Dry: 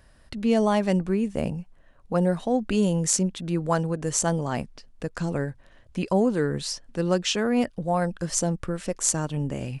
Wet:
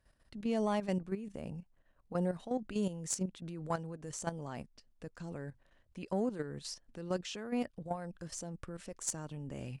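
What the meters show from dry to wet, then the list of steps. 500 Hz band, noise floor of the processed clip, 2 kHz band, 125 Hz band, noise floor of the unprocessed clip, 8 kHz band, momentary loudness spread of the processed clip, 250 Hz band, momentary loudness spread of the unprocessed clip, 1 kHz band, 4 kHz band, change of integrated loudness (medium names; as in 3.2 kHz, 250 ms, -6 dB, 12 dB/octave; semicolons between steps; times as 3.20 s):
-13.0 dB, -70 dBFS, -14.0 dB, -14.0 dB, -55 dBFS, -14.5 dB, 12 LU, -13.0 dB, 9 LU, -12.5 dB, -15.0 dB, -13.0 dB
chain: level held to a coarse grid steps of 11 dB; valve stage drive 10 dB, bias 0.25; trim -9 dB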